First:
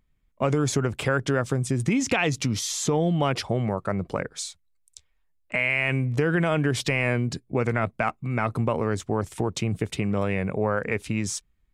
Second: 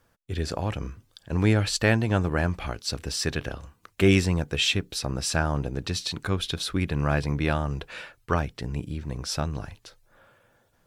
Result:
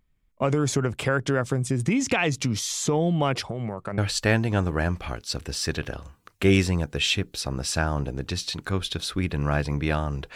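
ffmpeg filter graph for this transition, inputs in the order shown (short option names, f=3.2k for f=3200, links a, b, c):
-filter_complex "[0:a]asettb=1/sr,asplit=3[a][b][c];[a]atrim=end=3.454[d];[b]atrim=start=3.45:end=3.98,asetpts=PTS-STARTPTS,afade=t=in:d=0.004:c=qsin,afade=t=out:st=0.526:d=0.004:c=qsin,acompressor=threshold=-26dB:ratio=5:attack=3.2:release=140:knee=1:detection=peak[e];[c]atrim=start=3.976[f];[d][e]acrossfade=d=0.004:c1=hsin:c2=qsin[g];[g][f]acrossfade=d=0.004:c1=qsin:c2=hsin,apad=whole_dur=10.35,atrim=end=10.35,atrim=end=3.982[h];[1:a]atrim=start=1.558:end=7.93[i];[h][i]acrossfade=d=0.004:c1=hsin:c2=hsin"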